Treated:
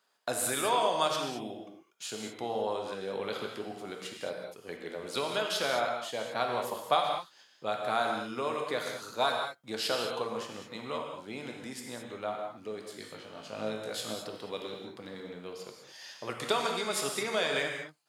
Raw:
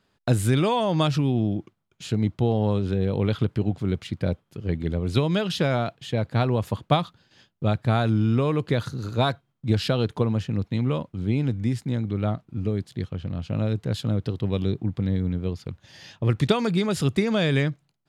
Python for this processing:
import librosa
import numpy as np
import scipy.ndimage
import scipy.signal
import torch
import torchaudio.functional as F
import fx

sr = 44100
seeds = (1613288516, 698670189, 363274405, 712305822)

y = scipy.signal.sosfilt(scipy.signal.butter(2, 920.0, 'highpass', fs=sr, output='sos'), x)
y = fx.peak_eq(y, sr, hz=2500.0, db=-9.5, octaves=2.5)
y = fx.room_flutter(y, sr, wall_m=3.2, rt60_s=0.22, at=(12.88, 14.14))
y = fx.rev_gated(y, sr, seeds[0], gate_ms=240, shape='flat', drr_db=1.0)
y = F.gain(torch.from_numpy(y), 4.0).numpy()